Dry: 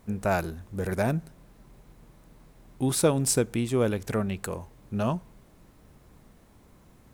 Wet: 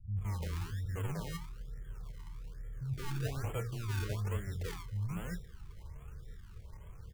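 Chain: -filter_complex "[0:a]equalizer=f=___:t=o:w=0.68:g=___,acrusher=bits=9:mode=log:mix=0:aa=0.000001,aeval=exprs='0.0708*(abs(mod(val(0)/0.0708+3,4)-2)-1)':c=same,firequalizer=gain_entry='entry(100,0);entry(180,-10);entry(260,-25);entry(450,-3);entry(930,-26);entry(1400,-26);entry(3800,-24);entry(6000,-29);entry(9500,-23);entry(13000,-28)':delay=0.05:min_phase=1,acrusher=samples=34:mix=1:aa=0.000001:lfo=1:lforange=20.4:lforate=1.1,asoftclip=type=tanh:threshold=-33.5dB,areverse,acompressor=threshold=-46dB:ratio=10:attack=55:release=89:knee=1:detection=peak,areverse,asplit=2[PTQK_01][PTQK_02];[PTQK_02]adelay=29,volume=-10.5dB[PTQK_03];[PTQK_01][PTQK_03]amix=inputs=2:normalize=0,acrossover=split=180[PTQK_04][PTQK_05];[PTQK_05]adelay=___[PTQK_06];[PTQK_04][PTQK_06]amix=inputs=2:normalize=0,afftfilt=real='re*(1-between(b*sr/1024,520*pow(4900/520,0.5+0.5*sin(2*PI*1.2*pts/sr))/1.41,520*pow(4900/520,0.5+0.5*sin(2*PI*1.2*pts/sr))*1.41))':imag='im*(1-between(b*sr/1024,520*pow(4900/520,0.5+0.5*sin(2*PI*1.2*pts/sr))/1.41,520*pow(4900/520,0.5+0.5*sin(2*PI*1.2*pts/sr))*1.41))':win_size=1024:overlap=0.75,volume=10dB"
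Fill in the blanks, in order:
680, -12.5, 170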